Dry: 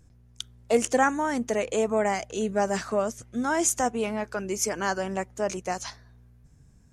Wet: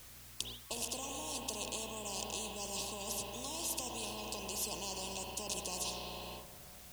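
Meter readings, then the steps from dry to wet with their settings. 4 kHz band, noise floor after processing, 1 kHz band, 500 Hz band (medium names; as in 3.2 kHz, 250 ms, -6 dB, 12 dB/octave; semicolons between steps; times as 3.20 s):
0.0 dB, -54 dBFS, -16.5 dB, -19.5 dB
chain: spring tank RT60 2.5 s, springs 33/51 ms, chirp 65 ms, DRR 7.5 dB; reverse; compression, threshold -27 dBFS, peak gain reduction 11 dB; reverse; bass shelf 210 Hz +9 dB; gate with hold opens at -32 dBFS; peak limiter -22 dBFS, peak gain reduction 9 dB; FFT band-reject 1.1–2.5 kHz; tone controls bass -7 dB, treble -2 dB; added noise white -71 dBFS; spectrum-flattening compressor 4:1; trim +8.5 dB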